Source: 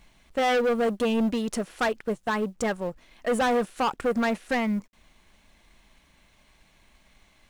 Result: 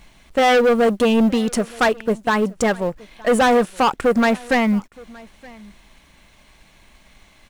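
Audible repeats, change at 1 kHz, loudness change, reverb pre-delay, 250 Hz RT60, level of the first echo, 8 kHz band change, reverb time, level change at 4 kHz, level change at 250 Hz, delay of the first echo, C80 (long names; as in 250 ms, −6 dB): 1, +8.5 dB, +8.5 dB, no reverb audible, no reverb audible, −24.0 dB, +8.5 dB, no reverb audible, +8.5 dB, +8.5 dB, 920 ms, no reverb audible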